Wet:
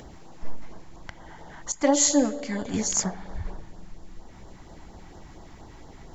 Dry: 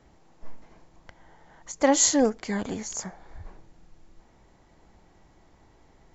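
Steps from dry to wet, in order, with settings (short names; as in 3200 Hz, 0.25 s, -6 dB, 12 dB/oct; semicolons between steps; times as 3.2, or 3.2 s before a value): 1.72–2.74 resonator 290 Hz, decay 0.62 s, mix 70%; spring tank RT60 2.9 s, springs 43 ms, chirp 60 ms, DRR 14 dB; LFO notch sine 4.3 Hz 450–2500 Hz; in parallel at -1 dB: upward compressor, threshold -43 dBFS; on the sum: gain +3.5 dB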